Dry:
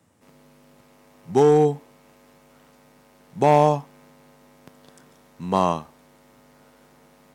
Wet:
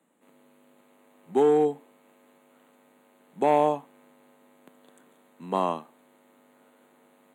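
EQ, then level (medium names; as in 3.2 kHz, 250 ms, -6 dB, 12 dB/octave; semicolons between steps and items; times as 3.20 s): high-pass 220 Hz 24 dB/octave; Butterworth band-stop 5.3 kHz, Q 1.8; bass shelf 390 Hz +3.5 dB; -6.0 dB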